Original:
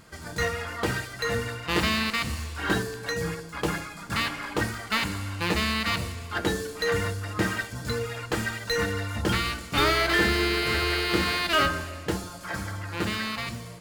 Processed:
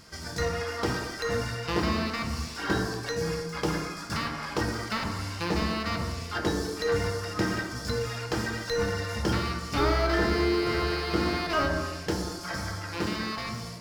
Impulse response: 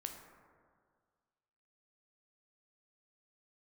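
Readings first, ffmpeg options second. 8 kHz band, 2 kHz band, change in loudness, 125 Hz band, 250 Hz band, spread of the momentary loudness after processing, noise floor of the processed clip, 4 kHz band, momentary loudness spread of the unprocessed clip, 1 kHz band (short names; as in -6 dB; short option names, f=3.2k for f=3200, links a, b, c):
-3.0 dB, -5.5 dB, -2.5 dB, -0.5 dB, +0.5 dB, 7 LU, -39 dBFS, -5.0 dB, 9 LU, -1.5 dB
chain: -filter_complex "[0:a]equalizer=f=5.3k:t=o:w=0.46:g=13,acrossover=split=1400[a][b];[b]acompressor=threshold=-35dB:ratio=6[c];[a][c]amix=inputs=2:normalize=0[d];[1:a]atrim=start_sample=2205,afade=t=out:st=0.33:d=0.01,atrim=end_sample=14994[e];[d][e]afir=irnorm=-1:irlink=0,volume=2.5dB"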